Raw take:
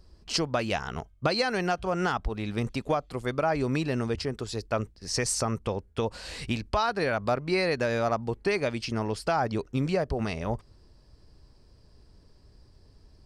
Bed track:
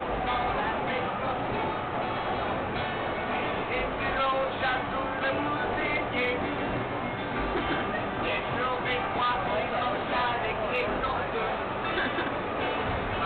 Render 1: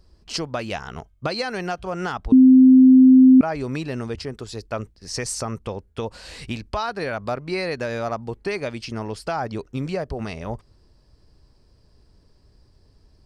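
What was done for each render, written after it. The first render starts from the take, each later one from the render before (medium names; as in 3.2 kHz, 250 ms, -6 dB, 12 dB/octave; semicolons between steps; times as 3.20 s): 2.32–3.41 s: bleep 259 Hz -7 dBFS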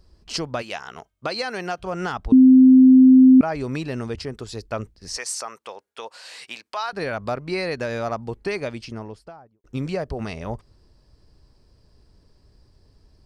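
0.61–1.81 s: high-pass 770 Hz -> 200 Hz 6 dB/octave; 5.17–6.93 s: high-pass 740 Hz; 8.52–9.64 s: studio fade out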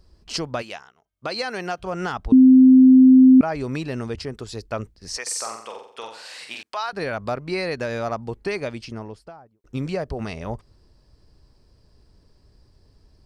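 0.61–1.34 s: dip -23.5 dB, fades 0.32 s; 5.22–6.63 s: flutter echo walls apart 7.7 m, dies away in 0.59 s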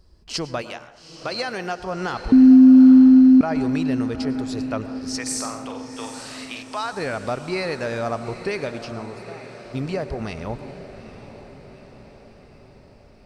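echo that smears into a reverb 845 ms, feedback 56%, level -12 dB; plate-style reverb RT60 0.93 s, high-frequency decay 0.35×, pre-delay 90 ms, DRR 13 dB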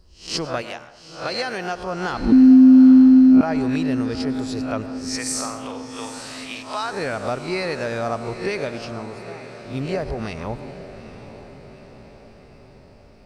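reverse spectral sustain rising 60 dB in 0.36 s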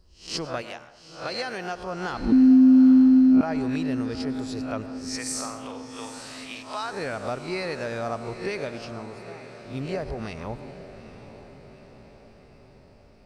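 trim -5 dB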